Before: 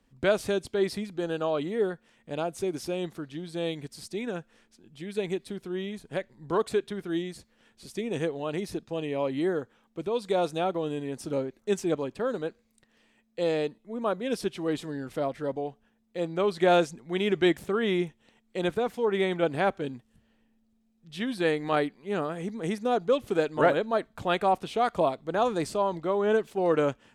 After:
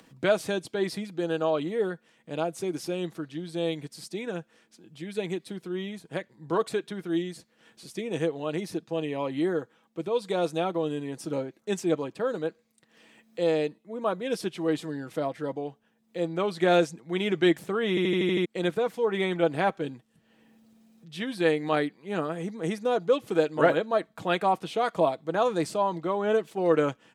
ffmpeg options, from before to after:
-filter_complex "[0:a]asplit=8[a][b][c][d][e][f][g][h];[a]atrim=end=17.972[i];[b]atrim=start=17.888:end=17.972[j];[c]atrim=start=17.888:end=17.972[k];[d]atrim=start=17.888:end=17.972[l];[e]atrim=start=17.888:end=17.972[m];[f]atrim=start=17.888:end=17.972[n];[g]atrim=start=17.888:end=17.972[o];[h]atrim=start=18.448[p];[i][j]acrossfade=d=0.004:c1=hsin:c2=hsin[q];[q][k]acrossfade=d=0.004:c1=hsin:c2=hsin[r];[r][l]acrossfade=d=0.004:c1=hsin:c2=hsin[s];[s][m]acrossfade=d=0.004:c1=hsin:c2=hsin[t];[t][n]acrossfade=d=0.004:c1=hsin:c2=hsin[u];[u][o]acrossfade=d=0.004:c1=hsin:c2=hsin[v];[v][p]acrossfade=d=0.004:c1=hsin:c2=hsin,highpass=130,aecho=1:1:6.2:0.39,acompressor=mode=upward:threshold=-46dB:ratio=2.5"

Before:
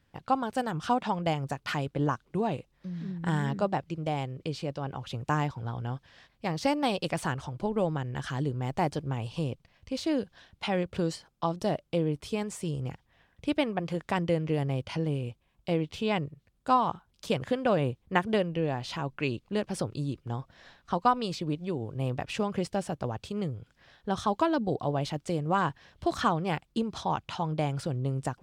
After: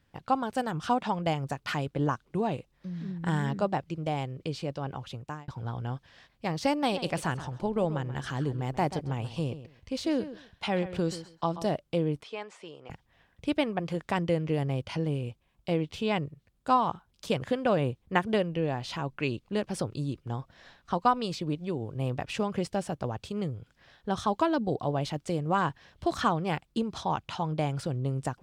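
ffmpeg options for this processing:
-filter_complex "[0:a]asettb=1/sr,asplit=3[a][b][c];[a]atrim=end=6.794[d];[b]atrim=start=6.79:end=11.67,asetpts=PTS-STARTPTS,afade=t=in:d=0.004:c=qsin,afade=t=out:st=4.876:d=0.004:c=qsin,asplit=2[e][f];[f]adelay=133,lowpass=f=3.8k:p=1,volume=-13dB,asplit=2[g][h];[h]adelay=133,lowpass=f=3.8k:p=1,volume=0.18[i];[e][g][i]amix=inputs=3:normalize=0,atrim=end_sample=215208[j];[c]atrim=start=11.666[k];[d][j]acrossfade=d=0.004:c1=hsin:c2=qsin[l];[l][k]acrossfade=d=0.004:c1=qsin:c2=hsin,asettb=1/sr,asplit=3[m][n][o];[m]atrim=end=12.234[p];[n]atrim=start=12.23:end=12.9,asetpts=PTS-STARTPTS,afade=t=in:d=0.004:c=qsin,afade=t=out:st=0.666:d=0.004:c=qsin,highpass=580,lowpass=3.2k[q];[o]atrim=start=12.896[r];[p][q]acrossfade=d=0.004:c1=hsin:c2=qsin[s];[s][r]acrossfade=d=0.004:c1=qsin:c2=hsin,asplit=2[t][u];[t]atrim=end=5.48,asetpts=PTS-STARTPTS,afade=t=out:st=4.95:d=0.53[v];[u]atrim=start=5.48,asetpts=PTS-STARTPTS,afade=t=in:d=0.004:c=hsin[w];[v][w]concat=n=2:v=0:a=1"

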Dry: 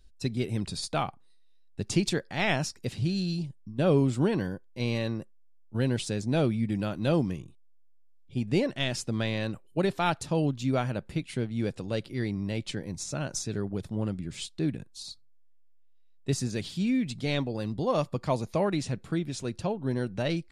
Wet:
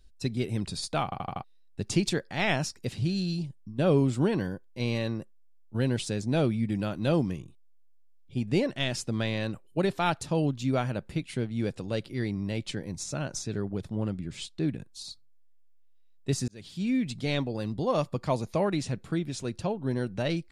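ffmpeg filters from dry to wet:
-filter_complex "[0:a]asettb=1/sr,asplit=3[a][b][c];[a]atrim=end=13.214[d];[b]atrim=start=13.21:end=14.79,asetpts=PTS-STARTPTS,afade=t=in:d=0.004:c=qsin,afade=t=out:st=1.576:d=0.004:c=qsin,highshelf=f=7.9k:g=-6.5[e];[c]atrim=start=14.786[f];[d][e]acrossfade=d=0.004:c1=hsin:c2=qsin[g];[g][f]acrossfade=d=0.004:c1=qsin:c2=hsin,asplit=7[h][i][j][k][l][m][n];[h]atrim=end=1.122[o];[i]atrim=start=1.038:end=1.122[p];[j]atrim=start=1.038:end=1.122[q];[k]atrim=start=1.038:end=1.122[r];[l]atrim=start=1.038:end=1.122[s];[m]atrim=start=1.438:end=16.48,asetpts=PTS-STARTPTS,afade=t=out:st=15.038:d=0.004:c=hsin[t];[n]atrim=start=16.48,asetpts=PTS-STARTPTS,afade=t=in:d=0.47[u];[o][p]acrossfade=d=0.004:c1=hsin:c2=hsin[v];[v][q]acrossfade=d=0.004:c1=hsin:c2=hsin[w];[w][r]acrossfade=d=0.004:c1=hsin:c2=hsin[x];[x][s]acrossfade=d=0.004:c1=hsin:c2=hsin[y];[t][u]concat=n=2:v=0:a=1[z];[y][z]acrossfade=d=0.004:c1=hsin:c2=hsin"

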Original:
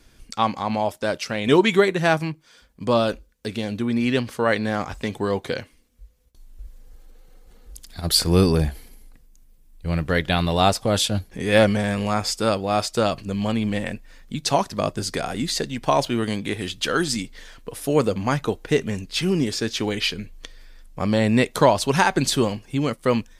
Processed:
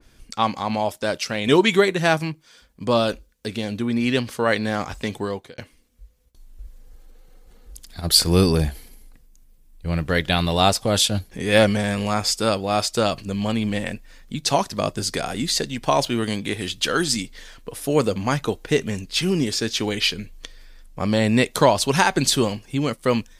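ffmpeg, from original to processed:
-filter_complex "[0:a]asplit=2[a][b];[a]atrim=end=5.58,asetpts=PTS-STARTPTS,afade=t=out:st=5.14:d=0.44[c];[b]atrim=start=5.58,asetpts=PTS-STARTPTS,afade=t=in:d=0.004:c=hsin[d];[c][d]concat=n=2:v=0:a=1,adynamicequalizer=threshold=0.02:dfrequency=2500:dqfactor=0.7:tfrequency=2500:tqfactor=0.7:attack=5:release=100:ratio=0.375:range=2:mode=boostabove:tftype=highshelf"

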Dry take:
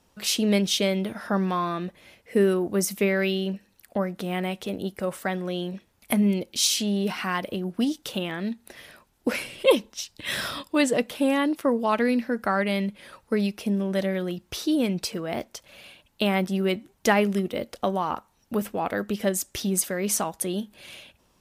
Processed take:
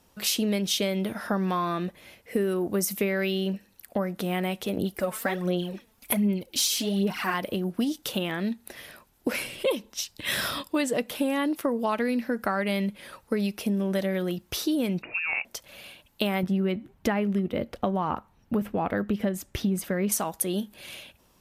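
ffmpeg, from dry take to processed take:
-filter_complex "[0:a]asettb=1/sr,asplit=3[a][b][c];[a]atrim=end=4.774[d];[b]atrim=start=4.77:end=7.34,asetpts=PTS-STARTPTS,afade=t=in:d=0.004:c=qsin,afade=t=out:st=2.566:d=0.004:c=qsin,aphaser=in_gain=1:out_gain=1:delay=4.6:decay=0.62:speed=1.3:type=sinusoidal[e];[c]atrim=start=7.336[f];[d][e]acrossfade=d=0.004:c1=hsin:c2=qsin[g];[g][f]acrossfade=d=0.004:c1=qsin:c2=hsin,asettb=1/sr,asplit=3[h][i][j];[h]atrim=end=15.024[k];[i]atrim=start=15.02:end=15.45,asetpts=PTS-STARTPTS,afade=t=in:d=0.004:c=qsin,afade=t=out:st=0.426:d=0.004:c=qsin,lowpass=f=2.5k:t=q:w=0.5098,lowpass=f=2.5k:t=q:w=0.6013,lowpass=f=2.5k:t=q:w=0.9,lowpass=f=2.5k:t=q:w=2.563,afreqshift=-2900[l];[j]atrim=start=15.446[m];[k][l]acrossfade=d=0.004:c1=hsin:c2=qsin[n];[n][m]acrossfade=d=0.004:c1=qsin:c2=hsin,asettb=1/sr,asplit=3[o][p][q];[o]atrim=end=16.434[r];[p]atrim=start=16.43:end=20.12,asetpts=PTS-STARTPTS,afade=t=in:d=0.004:c=qsin,afade=t=out:st=3.686:d=0.004:c=qsin,bass=f=250:g=7,treble=f=4k:g=-13[s];[q]atrim=start=20.116[t];[r][s]acrossfade=d=0.004:c1=hsin:c2=qsin[u];[u][t]acrossfade=d=0.004:c1=qsin:c2=hsin,equalizer=f=13k:w=1.6:g=7,acompressor=threshold=-24dB:ratio=6,volume=1.5dB"

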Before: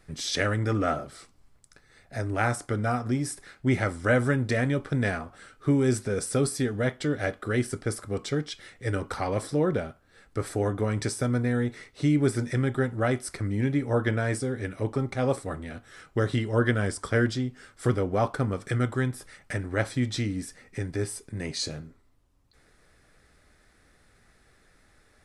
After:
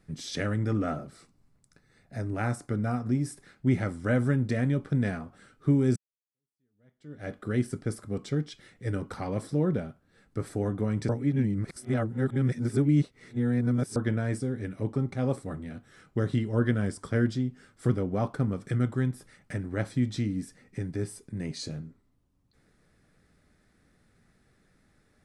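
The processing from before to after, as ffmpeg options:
-filter_complex "[0:a]asettb=1/sr,asplit=3[a][b][c];[a]atrim=end=0.864[d];[b]atrim=start=0.86:end=3.26,asetpts=PTS-STARTPTS,afade=t=in:d=0.004:c=qsin,afade=t=out:st=2.396:d=0.004:c=qsin,bandreject=f=3.2k:w=12[e];[c]atrim=start=3.256[f];[d][e]acrossfade=d=0.004:c1=hsin:c2=qsin[g];[g][f]acrossfade=d=0.004:c1=qsin:c2=hsin,asplit=4[h][i][j][k];[h]atrim=end=5.96,asetpts=PTS-STARTPTS,afade=t=out:st=5.956:d=0.004:c=hsin[l];[i]atrim=start=5.96:end=11.092,asetpts=PTS-STARTPTS,afade=t=in:d=1.36:c=exp[m];[j]atrim=start=11.088:end=13.962,asetpts=PTS-STARTPTS,areverse[n];[k]atrim=start=13.958[o];[l][m]concat=n=2:v=0:a=1[p];[p][n]acrossfade=d=0.004:c1=hsin:c2=hsin[q];[q][o]acrossfade=d=0.004:c1=hsin:c2=hsin,equalizer=f=180:t=o:w=1.8:g=11,volume=-8dB"

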